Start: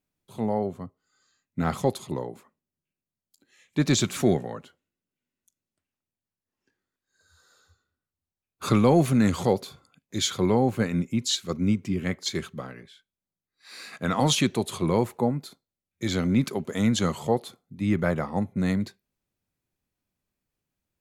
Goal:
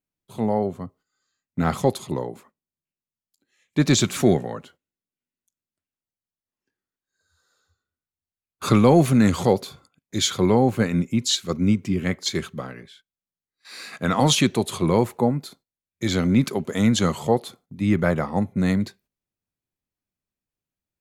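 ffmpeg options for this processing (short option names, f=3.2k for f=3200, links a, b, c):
-af "agate=range=-11dB:threshold=-56dB:ratio=16:detection=peak,volume=4dB"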